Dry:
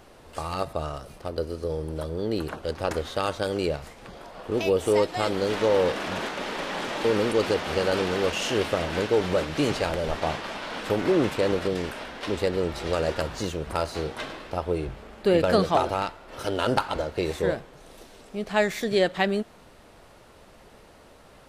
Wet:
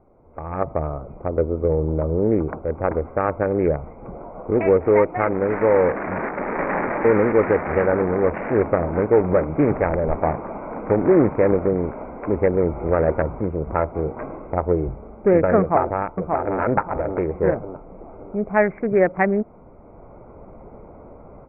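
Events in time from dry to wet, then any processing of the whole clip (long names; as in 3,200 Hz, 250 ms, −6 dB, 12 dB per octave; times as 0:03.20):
0:04.48–0:07.86: high-shelf EQ 2,500 Hz +10 dB
0:15.59–0:16.60: delay throw 580 ms, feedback 35%, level −4 dB
whole clip: adaptive Wiener filter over 25 samples; Butterworth low-pass 2,300 Hz 96 dB per octave; automatic gain control gain up to 15 dB; level −3.5 dB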